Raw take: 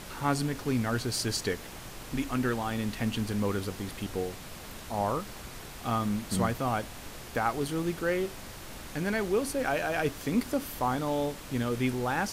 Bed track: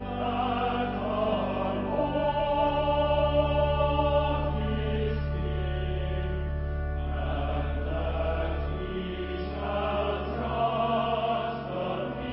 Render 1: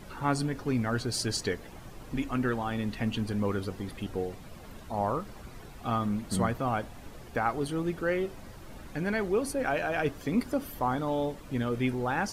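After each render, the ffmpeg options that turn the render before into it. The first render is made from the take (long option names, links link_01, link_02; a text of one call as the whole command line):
ffmpeg -i in.wav -af "afftdn=noise_reduction=11:noise_floor=-44" out.wav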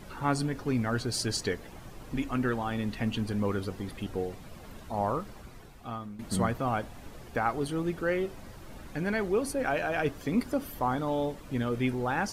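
ffmpeg -i in.wav -filter_complex "[0:a]asplit=2[link_01][link_02];[link_01]atrim=end=6.19,asetpts=PTS-STARTPTS,afade=type=out:start_time=5.21:duration=0.98:silence=0.16788[link_03];[link_02]atrim=start=6.19,asetpts=PTS-STARTPTS,afade=type=in:duration=0.004:curve=hsin:silence=0.16788[link_04];[link_03][link_04]concat=n=2:v=0:a=1" out.wav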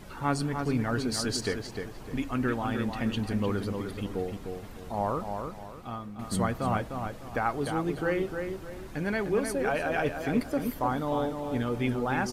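ffmpeg -i in.wav -filter_complex "[0:a]asplit=2[link_01][link_02];[link_02]adelay=303,lowpass=frequency=2700:poles=1,volume=-5.5dB,asplit=2[link_03][link_04];[link_04]adelay=303,lowpass=frequency=2700:poles=1,volume=0.34,asplit=2[link_05][link_06];[link_06]adelay=303,lowpass=frequency=2700:poles=1,volume=0.34,asplit=2[link_07][link_08];[link_08]adelay=303,lowpass=frequency=2700:poles=1,volume=0.34[link_09];[link_01][link_03][link_05][link_07][link_09]amix=inputs=5:normalize=0" out.wav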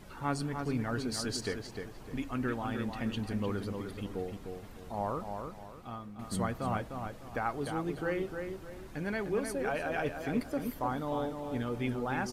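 ffmpeg -i in.wav -af "volume=-5dB" out.wav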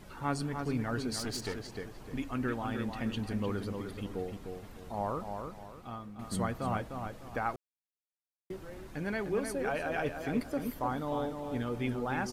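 ffmpeg -i in.wav -filter_complex "[0:a]asettb=1/sr,asplit=3[link_01][link_02][link_03];[link_01]atrim=end=1.184[link_04];[link_02]atrim=start=1.18:end=1.71,asetpts=PTS-STARTPTS,afade=type=in:duration=0.004:curve=qsin,afade=type=out:start_time=0.526:duration=0.004:curve=qsin,aeval=exprs='clip(val(0),-1,0.0133)':channel_layout=same[link_05];[link_03]atrim=start=1.706[link_06];[link_04][link_05]acrossfade=duration=0.004:curve1=hsin:curve2=qsin[link_07];[link_07][link_06]acrossfade=duration=0.004:curve1=qsin:curve2=hsin,asplit=3[link_08][link_09][link_10];[link_08]atrim=end=7.56,asetpts=PTS-STARTPTS,afade=type=out:start_time=7.556:duration=0.004:curve=hsin[link_11];[link_09]atrim=start=7.56:end=8.5,asetpts=PTS-STARTPTS,volume=0[link_12];[link_10]atrim=start=8.5,asetpts=PTS-STARTPTS,afade=type=in:duration=0.004:curve=hsin[link_13];[link_11][link_12][link_13]concat=n=3:v=0:a=1" out.wav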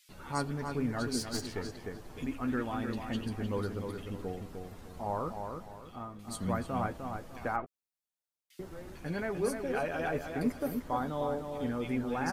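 ffmpeg -i in.wav -filter_complex "[0:a]asplit=2[link_01][link_02];[link_02]adelay=12,volume=-9dB[link_03];[link_01][link_03]amix=inputs=2:normalize=0,acrossover=split=2500[link_04][link_05];[link_04]adelay=90[link_06];[link_06][link_05]amix=inputs=2:normalize=0" out.wav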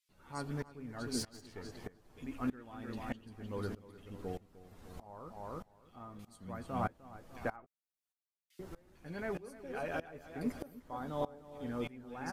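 ffmpeg -i in.wav -af "aeval=exprs='val(0)*pow(10,-22*if(lt(mod(-1.6*n/s,1),2*abs(-1.6)/1000),1-mod(-1.6*n/s,1)/(2*abs(-1.6)/1000),(mod(-1.6*n/s,1)-2*abs(-1.6)/1000)/(1-2*abs(-1.6)/1000))/20)':channel_layout=same" out.wav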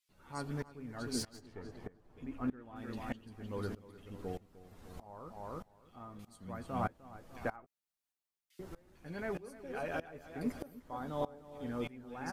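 ffmpeg -i in.wav -filter_complex "[0:a]asplit=3[link_01][link_02][link_03];[link_01]afade=type=out:start_time=1.38:duration=0.02[link_04];[link_02]highshelf=frequency=2600:gain=-12,afade=type=in:start_time=1.38:duration=0.02,afade=type=out:start_time=2.75:duration=0.02[link_05];[link_03]afade=type=in:start_time=2.75:duration=0.02[link_06];[link_04][link_05][link_06]amix=inputs=3:normalize=0" out.wav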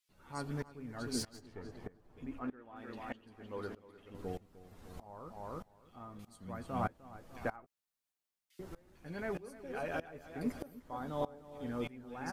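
ffmpeg -i in.wav -filter_complex "[0:a]asettb=1/sr,asplit=3[link_01][link_02][link_03];[link_01]atrim=end=2.394[link_04];[link_02]atrim=start=2.39:end=4.15,asetpts=PTS-STARTPTS,afade=type=in:duration=0.004:curve=qsin,afade=type=out:start_time=1.756:duration=0.004:curve=qsin,bass=frequency=250:gain=-10,treble=frequency=4000:gain=-8[link_05];[link_03]atrim=start=4.146[link_06];[link_04][link_05]acrossfade=duration=0.004:curve1=hsin:curve2=qsin[link_07];[link_07][link_06]acrossfade=duration=0.004:curve1=qsin:curve2=hsin" out.wav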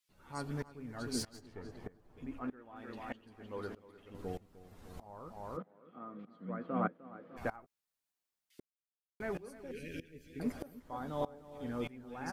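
ffmpeg -i in.wav -filter_complex "[0:a]asplit=3[link_01][link_02][link_03];[link_01]afade=type=out:start_time=5.56:duration=0.02[link_04];[link_02]highpass=frequency=170:width=0.5412,highpass=frequency=170:width=1.3066,equalizer=frequency=180:width_type=q:width=4:gain=7,equalizer=frequency=290:width_type=q:width=4:gain=7,equalizer=frequency=490:width_type=q:width=4:gain=8,equalizer=frequency=860:width_type=q:width=4:gain=-6,equalizer=frequency=1300:width_type=q:width=4:gain=5,equalizer=frequency=2700:width_type=q:width=4:gain=-5,lowpass=frequency=2900:width=0.5412,lowpass=frequency=2900:width=1.3066,afade=type=in:start_time=5.56:duration=0.02,afade=type=out:start_time=7.36:duration=0.02[link_05];[link_03]afade=type=in:start_time=7.36:duration=0.02[link_06];[link_04][link_05][link_06]amix=inputs=3:normalize=0,asettb=1/sr,asplit=3[link_07][link_08][link_09];[link_07]atrim=end=9.714[link_10];[link_08]atrim=start=9.71:end=10.4,asetpts=PTS-STARTPTS,afade=type=in:duration=0.004:curve=qsin,afade=type=out:start_time=0.686:duration=0.004:curve=qsin,asuperstop=centerf=930:order=8:qfactor=0.6[link_11];[link_09]atrim=start=10.396[link_12];[link_10][link_11]acrossfade=duration=0.004:curve1=hsin:curve2=qsin[link_13];[link_13][link_12]acrossfade=duration=0.004:curve1=qsin:curve2=hsin,asplit=3[link_14][link_15][link_16];[link_14]atrim=end=8.6,asetpts=PTS-STARTPTS,afade=type=out:start_time=8.596:duration=0.004:curve=hsin[link_17];[link_15]atrim=start=8.6:end=9.2,asetpts=PTS-STARTPTS,volume=0[link_18];[link_16]atrim=start=9.2,asetpts=PTS-STARTPTS,afade=type=in:duration=0.004:curve=hsin[link_19];[link_17][link_18][link_19]concat=n=3:v=0:a=1" out.wav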